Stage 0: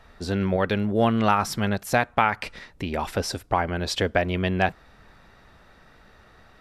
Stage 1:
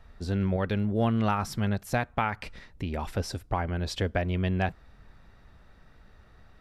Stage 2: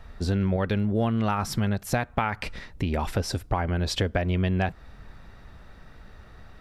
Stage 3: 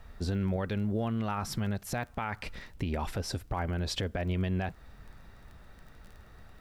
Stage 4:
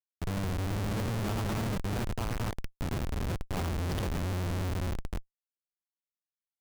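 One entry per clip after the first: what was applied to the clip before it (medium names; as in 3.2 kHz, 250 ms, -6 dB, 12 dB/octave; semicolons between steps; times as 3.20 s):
bass shelf 170 Hz +11.5 dB; trim -8 dB
compression 3:1, threshold -30 dBFS, peak gain reduction 7.5 dB; trim +7.5 dB
peak limiter -17.5 dBFS, peak gain reduction 7 dB; crackle 16 per s -38 dBFS; bit crusher 11-bit; trim -5 dB
chunks repeated in reverse 181 ms, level -2 dB; echo that smears into a reverb 464 ms, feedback 45%, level -8 dB; Schmitt trigger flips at -28 dBFS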